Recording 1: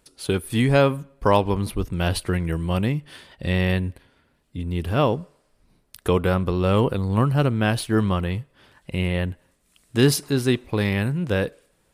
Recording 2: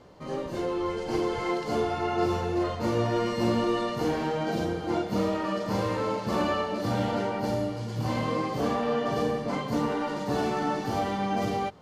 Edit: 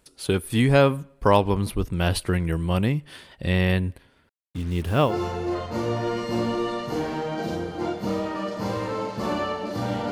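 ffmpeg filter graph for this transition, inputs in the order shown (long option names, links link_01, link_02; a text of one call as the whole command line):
ffmpeg -i cue0.wav -i cue1.wav -filter_complex "[0:a]asettb=1/sr,asplit=3[link_01][link_02][link_03];[link_01]atrim=end=4.294[link_04];[link_02]atrim=start=4.29:end=5.17,asetpts=PTS-STARTPTS,afade=type=in:duration=0.004:curve=qsin,afade=type=out:start_time=0.876:duration=0.004:curve=qsin,acrusher=bits=6:mix=0:aa=0.5[link_05];[link_03]atrim=start=5.166[link_06];[link_04][link_05]acrossfade=duration=0.004:curve1=hsin:curve2=qsin[link_07];[link_07][link_06]acrossfade=duration=0.004:curve1=qsin:curve2=hsin,apad=whole_dur=10.11,atrim=end=10.11,atrim=end=5.17,asetpts=PTS-STARTPTS[link_08];[1:a]atrim=start=2.12:end=7.2,asetpts=PTS-STARTPTS[link_09];[link_08][link_09]acrossfade=duration=0.14:curve1=tri:curve2=tri" out.wav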